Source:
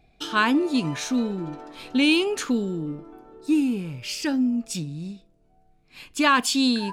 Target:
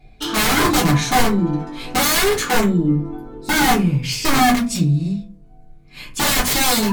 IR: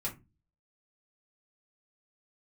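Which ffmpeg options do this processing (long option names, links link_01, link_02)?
-filter_complex "[0:a]asettb=1/sr,asplit=3[link_01][link_02][link_03];[link_01]atrim=end=3.034[link_04];[link_02]atrim=start=3.03:end=3.97,asetpts=PTS-STARTPTS,afade=type=in:duration=0.004:curve=qsin,afade=type=out:start_time=0.936:duration=0.004:curve=qsin,aeval=exprs='0.237*(cos(1*acos(clip(val(0)/0.237,-1,1)))-cos(1*PI/2))+0.00841*(cos(5*acos(clip(val(0)/0.237,-1,1)))-cos(5*PI/2))':channel_layout=same[link_05];[link_03]atrim=start=3.966[link_06];[link_04][link_05]acrossfade=duration=0.004:curve1=hsin:curve2=qsin[link_07];[link_07][link_06]acrossfade=duration=0.004:curve1=qsin:curve2=hsin,aeval=exprs='(mod(10*val(0)+1,2)-1)/10':channel_layout=same[link_08];[1:a]atrim=start_sample=2205,asetrate=38808,aresample=44100[link_09];[link_08][link_09]afir=irnorm=-1:irlink=0,volume=6dB"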